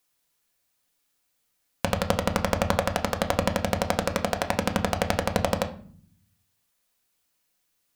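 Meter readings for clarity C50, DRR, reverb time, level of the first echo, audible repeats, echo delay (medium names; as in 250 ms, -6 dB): 13.5 dB, 4.5 dB, 0.50 s, no echo, no echo, no echo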